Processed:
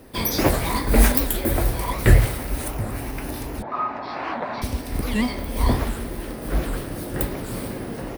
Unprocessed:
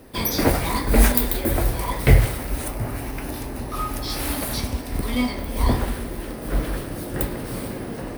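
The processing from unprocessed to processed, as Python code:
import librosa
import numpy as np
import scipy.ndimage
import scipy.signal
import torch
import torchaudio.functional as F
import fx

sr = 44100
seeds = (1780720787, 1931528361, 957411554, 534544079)

y = fx.cabinet(x, sr, low_hz=240.0, low_slope=12, high_hz=3200.0, hz=(310.0, 460.0, 690.0, 1000.0, 1500.0, 3200.0), db=(-5, -4, 7, 10, 3, -10), at=(3.63, 4.62))
y = fx.record_warp(y, sr, rpm=78.0, depth_cents=250.0)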